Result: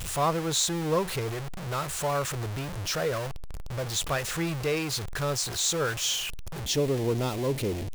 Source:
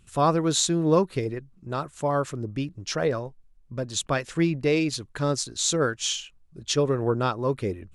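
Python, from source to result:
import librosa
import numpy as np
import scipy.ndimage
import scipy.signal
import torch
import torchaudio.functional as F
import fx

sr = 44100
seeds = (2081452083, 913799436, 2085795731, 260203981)

y = x + 0.5 * 10.0 ** (-23.0 / 20.0) * np.sign(x)
y = fx.peak_eq(y, sr, hz=fx.steps((0.0, 260.0), (6.66, 1300.0)), db=-11.0, octaves=0.82)
y = y * 10.0 ** (-5.0 / 20.0)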